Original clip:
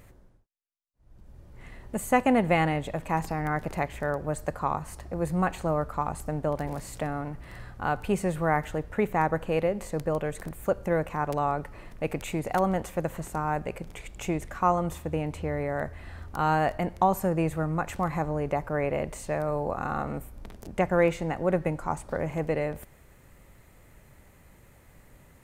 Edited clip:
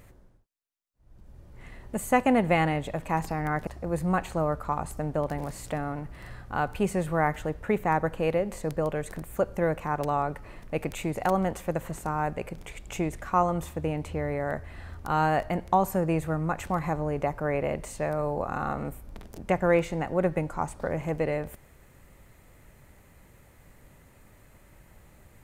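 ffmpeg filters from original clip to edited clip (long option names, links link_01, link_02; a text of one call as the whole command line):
ffmpeg -i in.wav -filter_complex "[0:a]asplit=2[link_01][link_02];[link_01]atrim=end=3.672[link_03];[link_02]atrim=start=4.958[link_04];[link_03][link_04]acrossfade=duration=0.004:curve1=hsin:curve2=hsin" out.wav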